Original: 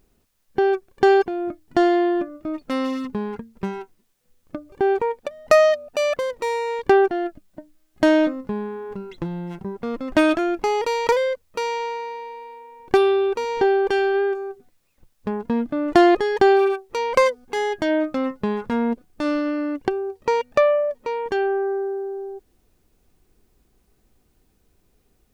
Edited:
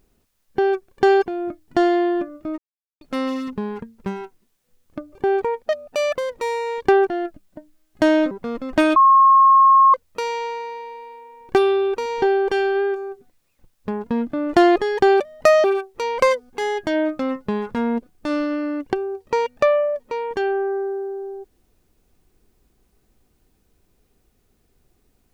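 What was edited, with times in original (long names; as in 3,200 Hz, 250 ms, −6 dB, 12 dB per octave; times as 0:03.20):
0:02.58: splice in silence 0.43 s
0:05.26–0:05.70: move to 0:16.59
0:08.32–0:09.70: remove
0:10.35–0:11.33: beep over 1,080 Hz −8.5 dBFS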